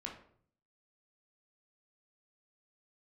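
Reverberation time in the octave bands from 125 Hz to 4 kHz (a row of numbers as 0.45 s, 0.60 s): 0.85 s, 0.70 s, 0.60 s, 0.55 s, 0.45 s, 0.35 s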